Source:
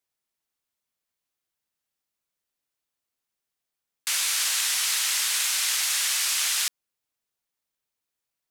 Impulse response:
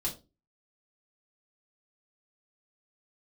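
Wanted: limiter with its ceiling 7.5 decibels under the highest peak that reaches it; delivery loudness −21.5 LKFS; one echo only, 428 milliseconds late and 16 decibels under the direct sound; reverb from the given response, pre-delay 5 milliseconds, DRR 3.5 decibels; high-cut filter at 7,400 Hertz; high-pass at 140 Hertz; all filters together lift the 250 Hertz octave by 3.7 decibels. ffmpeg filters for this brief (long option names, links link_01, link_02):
-filter_complex "[0:a]highpass=140,lowpass=7400,equalizer=frequency=250:width_type=o:gain=5.5,alimiter=limit=-22dB:level=0:latency=1,aecho=1:1:428:0.158,asplit=2[link_01][link_02];[1:a]atrim=start_sample=2205,adelay=5[link_03];[link_02][link_03]afir=irnorm=-1:irlink=0,volume=-6dB[link_04];[link_01][link_04]amix=inputs=2:normalize=0,volume=5.5dB"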